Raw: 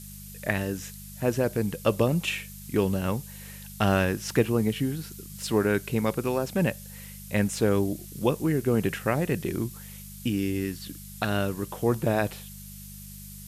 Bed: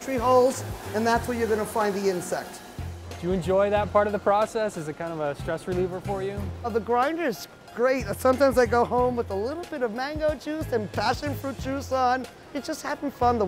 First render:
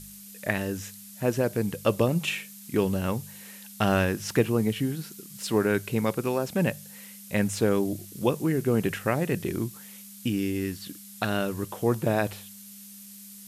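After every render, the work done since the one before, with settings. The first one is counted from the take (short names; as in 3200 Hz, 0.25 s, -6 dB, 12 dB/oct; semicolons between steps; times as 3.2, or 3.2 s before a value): de-hum 50 Hz, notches 3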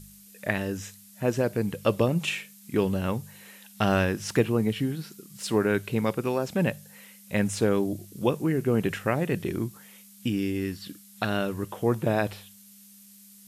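noise print and reduce 6 dB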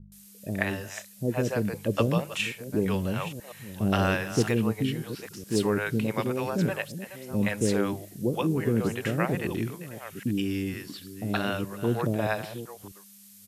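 reverse delay 0.68 s, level -12.5 dB; bands offset in time lows, highs 0.12 s, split 510 Hz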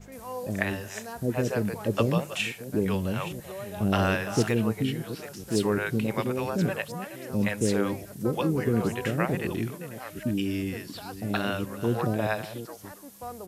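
add bed -17.5 dB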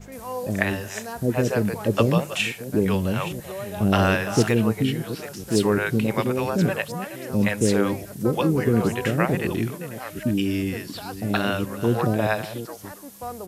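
gain +5 dB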